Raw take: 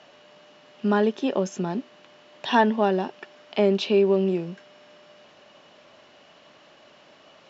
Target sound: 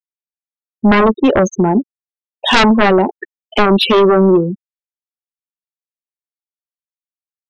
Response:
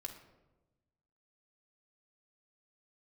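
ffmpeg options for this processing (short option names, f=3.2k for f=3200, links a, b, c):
-filter_complex "[0:a]asplit=2[a][b];[b]adelay=14,volume=-12dB[c];[a][c]amix=inputs=2:normalize=0,afftfilt=real='re*gte(hypot(re,im),0.0501)':imag='im*gte(hypot(re,im),0.0501)':win_size=1024:overlap=0.75,aeval=exprs='0.473*sin(PI/2*3.98*val(0)/0.473)':c=same,volume=1dB"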